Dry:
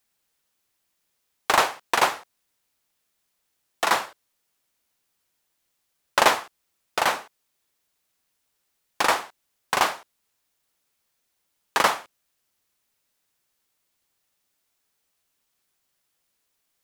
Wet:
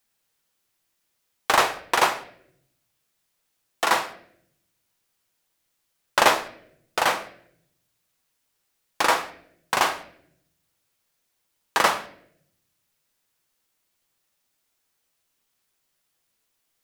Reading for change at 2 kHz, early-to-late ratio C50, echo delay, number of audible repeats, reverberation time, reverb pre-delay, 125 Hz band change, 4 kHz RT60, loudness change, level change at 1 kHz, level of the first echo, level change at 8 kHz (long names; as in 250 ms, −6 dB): +1.0 dB, 14.0 dB, no echo audible, no echo audible, 0.70 s, 6 ms, +1.5 dB, 0.50 s, +0.5 dB, +0.5 dB, no echo audible, +0.5 dB